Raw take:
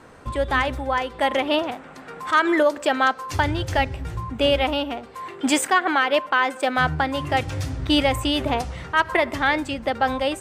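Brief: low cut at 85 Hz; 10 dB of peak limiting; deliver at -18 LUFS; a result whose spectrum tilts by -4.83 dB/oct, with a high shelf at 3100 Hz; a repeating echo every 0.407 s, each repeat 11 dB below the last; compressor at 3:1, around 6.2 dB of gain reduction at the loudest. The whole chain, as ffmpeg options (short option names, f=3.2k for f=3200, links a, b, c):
-af "highpass=85,highshelf=f=3.1k:g=-3,acompressor=threshold=-23dB:ratio=3,alimiter=limit=-21.5dB:level=0:latency=1,aecho=1:1:407|814|1221:0.282|0.0789|0.0221,volume=13.5dB"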